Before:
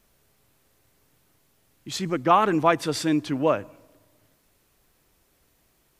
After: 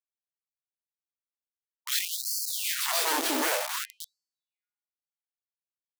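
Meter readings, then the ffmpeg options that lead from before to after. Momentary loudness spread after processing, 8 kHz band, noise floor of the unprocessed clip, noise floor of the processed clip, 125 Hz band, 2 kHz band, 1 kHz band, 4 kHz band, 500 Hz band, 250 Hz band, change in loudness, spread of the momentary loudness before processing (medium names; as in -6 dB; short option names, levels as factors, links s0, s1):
16 LU, +9.0 dB, -66 dBFS, under -85 dBFS, under -40 dB, +0.5 dB, -10.5 dB, +5.0 dB, -12.0 dB, -13.5 dB, -4.0 dB, 10 LU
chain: -filter_complex "[0:a]acrossover=split=200 4200:gain=0.178 1 0.178[s0][s1][s2];[s0][s1][s2]amix=inputs=3:normalize=0,acrossover=split=460|3000[s3][s4][s5];[s4]acompressor=threshold=0.0282:ratio=3[s6];[s3][s6][s5]amix=inputs=3:normalize=0,asplit=2[s7][s8];[s8]aecho=0:1:283|566|849|1132:0.316|0.108|0.0366|0.0124[s9];[s7][s9]amix=inputs=2:normalize=0,acrusher=bits=5:mix=0:aa=0.000001,bandreject=f=205.5:t=h:w=4,bandreject=f=411:t=h:w=4,bandreject=f=616.5:t=h:w=4,bandreject=f=822:t=h:w=4,bandreject=f=1027.5:t=h:w=4,bandreject=f=1233:t=h:w=4,bandreject=f=1438.5:t=h:w=4,bandreject=f=1644:t=h:w=4,bandreject=f=1849.5:t=h:w=4,bandreject=f=2055:t=h:w=4,bandreject=f=2260.5:t=h:w=4,bandreject=f=2466:t=h:w=4,aeval=exprs='0.211*sin(PI/2*5.01*val(0)/0.211)':c=same,highshelf=f=6000:g=8,acompressor=mode=upward:threshold=0.0794:ratio=2.5,highpass=f=85:w=0.5412,highpass=f=85:w=1.3066,aeval=exprs='max(val(0),0)':c=same,afftfilt=real='re*gte(b*sr/1024,230*pow(4300/230,0.5+0.5*sin(2*PI*0.53*pts/sr)))':imag='im*gte(b*sr/1024,230*pow(4300/230,0.5+0.5*sin(2*PI*0.53*pts/sr)))':win_size=1024:overlap=0.75,volume=0.501"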